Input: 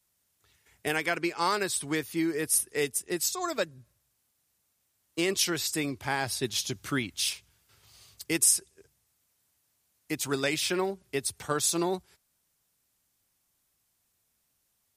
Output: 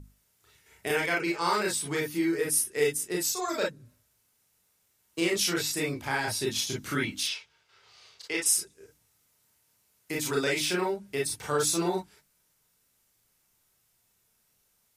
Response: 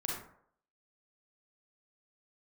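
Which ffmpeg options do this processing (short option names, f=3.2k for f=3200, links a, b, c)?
-filter_complex "[0:a]asettb=1/sr,asplit=3[a][b][c];[a]atrim=end=7.234[d];[b]atrim=start=7.23:end=8.46,asetpts=PTS-STARTPTS,afade=t=in:d=0.004:c=qsin,afade=t=out:st=1.226:d=0.004:c=qsin,acrossover=split=400 5700:gain=0.178 1 0.0708[e][f][g];[e][f][g]amix=inputs=3:normalize=0[h];[c]atrim=start=8.456[i];[d][h]acrossfade=d=0.004:c1=hsin:c2=qsin[j];[j][i]acrossfade=d=0.004:c1=qsin:c2=hsin[k];[1:a]atrim=start_sample=2205,atrim=end_sample=3528,asetrate=57330,aresample=44100[l];[k][l]afir=irnorm=-1:irlink=0,aeval=exprs='val(0)+0.00398*(sin(2*PI*50*n/s)+sin(2*PI*2*50*n/s)/2+sin(2*PI*3*50*n/s)/3+sin(2*PI*4*50*n/s)/4+sin(2*PI*5*50*n/s)/5)':c=same,bandreject=f=50:t=h:w=6,bandreject=f=100:t=h:w=6,bandreject=f=150:t=h:w=6,bandreject=f=200:t=h:w=6,bandreject=f=250:t=h:w=6,bandreject=f=300:t=h:w=6,asplit=2[m][n];[n]acompressor=threshold=-41dB:ratio=6,volume=-1dB[o];[m][o]amix=inputs=2:normalize=0"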